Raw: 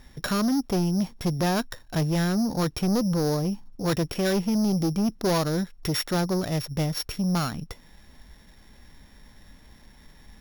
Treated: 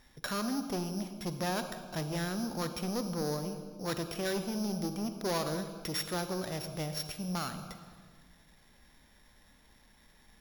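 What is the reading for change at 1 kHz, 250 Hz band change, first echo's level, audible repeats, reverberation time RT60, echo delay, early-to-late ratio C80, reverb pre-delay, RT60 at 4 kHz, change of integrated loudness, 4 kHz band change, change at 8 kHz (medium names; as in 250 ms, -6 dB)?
-6.5 dB, -11.0 dB, no echo, no echo, 1.8 s, no echo, 9.5 dB, 37 ms, 1.4 s, -9.5 dB, -6.5 dB, -5.5 dB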